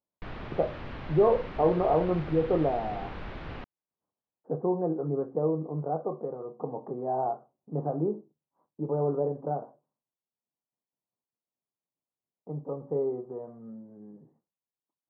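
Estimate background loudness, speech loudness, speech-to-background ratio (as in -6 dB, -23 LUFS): -41.5 LUFS, -30.0 LUFS, 11.5 dB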